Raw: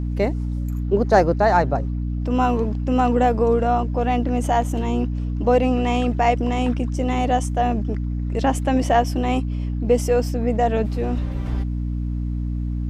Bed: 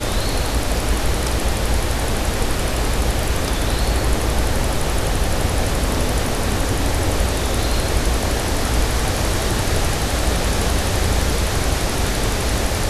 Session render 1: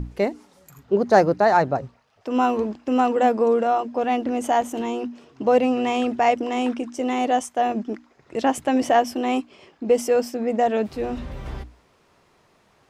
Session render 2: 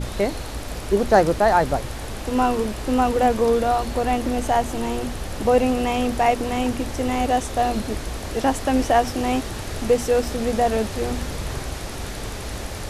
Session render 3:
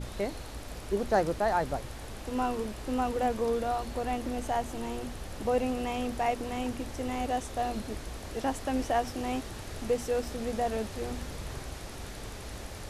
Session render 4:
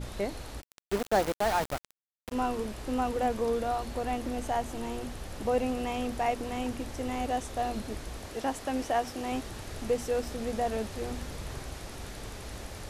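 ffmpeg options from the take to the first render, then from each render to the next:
-af "bandreject=f=60:t=h:w=6,bandreject=f=120:t=h:w=6,bandreject=f=180:t=h:w=6,bandreject=f=240:t=h:w=6,bandreject=f=300:t=h:w=6"
-filter_complex "[1:a]volume=0.282[s0];[0:a][s0]amix=inputs=2:normalize=0"
-af "volume=0.299"
-filter_complex "[0:a]asplit=3[s0][s1][s2];[s0]afade=t=out:st=0.6:d=0.02[s3];[s1]aeval=exprs='val(0)*gte(abs(val(0)),0.0335)':c=same,afade=t=in:st=0.6:d=0.02,afade=t=out:st=2.31:d=0.02[s4];[s2]afade=t=in:st=2.31:d=0.02[s5];[s3][s4][s5]amix=inputs=3:normalize=0,asettb=1/sr,asplit=3[s6][s7][s8];[s6]atrim=end=8.264[s9];[s7]atrim=start=8.26:end=9.32,asetpts=PTS-STARTPTS,afade=t=in:d=0.004:c=qsin,afade=t=out:st=1.056:d=0.004:c=qsin,lowshelf=f=130:g=-8.5[s10];[s8]atrim=start=9.316[s11];[s9][s10]acrossfade=d=0.004:c1=hsin:c2=qsin[s12];[s12][s11]acrossfade=d=0.004:c1=qsin:c2=hsin"

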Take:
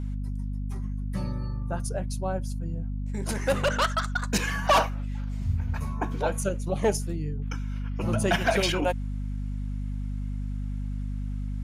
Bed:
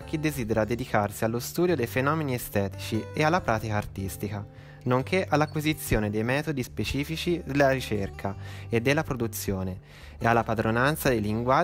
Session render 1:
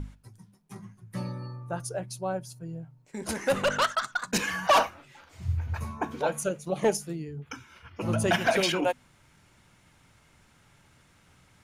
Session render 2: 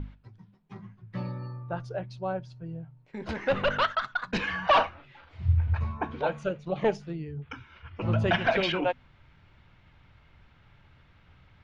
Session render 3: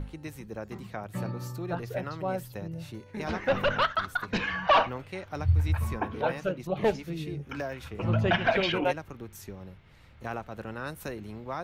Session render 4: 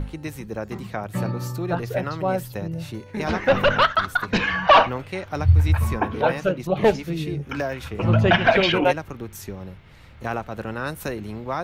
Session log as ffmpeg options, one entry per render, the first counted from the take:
-af "bandreject=f=50:t=h:w=6,bandreject=f=100:t=h:w=6,bandreject=f=150:t=h:w=6,bandreject=f=200:t=h:w=6,bandreject=f=250:t=h:w=6"
-af "lowpass=f=3800:w=0.5412,lowpass=f=3800:w=1.3066,asubboost=boost=2.5:cutoff=120"
-filter_complex "[1:a]volume=0.211[s0];[0:a][s0]amix=inputs=2:normalize=0"
-af "volume=2.51"

